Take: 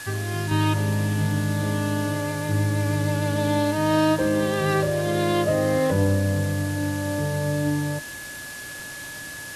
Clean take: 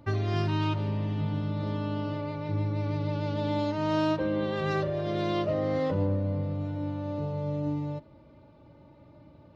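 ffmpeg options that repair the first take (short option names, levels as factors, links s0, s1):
-af "adeclick=t=4,bandreject=f=1700:w=30,afwtdn=0.013,asetnsamples=n=441:p=0,asendcmd='0.51 volume volume -6.5dB',volume=1"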